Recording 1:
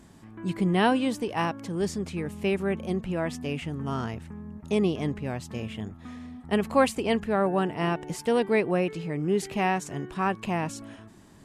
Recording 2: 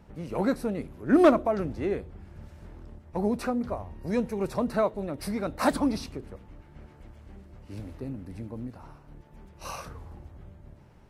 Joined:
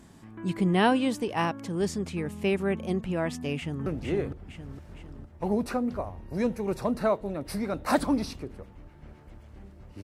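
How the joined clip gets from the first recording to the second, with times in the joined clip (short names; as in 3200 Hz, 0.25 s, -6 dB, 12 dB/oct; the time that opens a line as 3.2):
recording 1
3.56–3.86 echo throw 0.46 s, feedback 50%, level -4 dB
3.86 switch to recording 2 from 1.59 s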